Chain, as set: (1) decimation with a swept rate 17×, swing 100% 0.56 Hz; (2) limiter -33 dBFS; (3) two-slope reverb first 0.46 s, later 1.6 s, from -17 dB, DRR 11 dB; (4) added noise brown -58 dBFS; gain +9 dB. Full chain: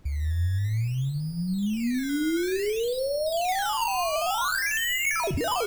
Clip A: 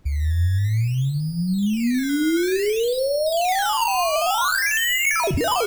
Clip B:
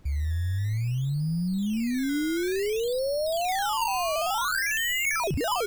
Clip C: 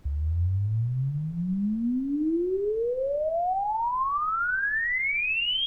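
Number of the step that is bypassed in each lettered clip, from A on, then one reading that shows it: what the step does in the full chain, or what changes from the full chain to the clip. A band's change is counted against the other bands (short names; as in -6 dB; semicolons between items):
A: 2, mean gain reduction 6.0 dB; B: 3, crest factor change -3.5 dB; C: 1, 2 kHz band +1.5 dB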